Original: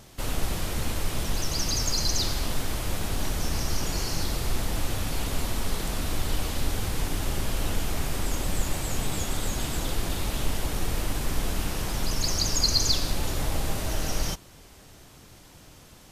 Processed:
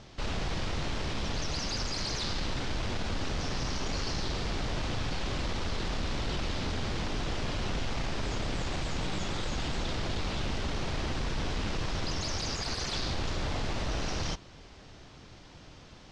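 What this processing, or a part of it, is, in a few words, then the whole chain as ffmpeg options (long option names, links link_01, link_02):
synthesiser wavefolder: -af "aeval=exprs='0.0501*(abs(mod(val(0)/0.0501+3,4)-2)-1)':channel_layout=same,lowpass=frequency=5500:width=0.5412,lowpass=frequency=5500:width=1.3066"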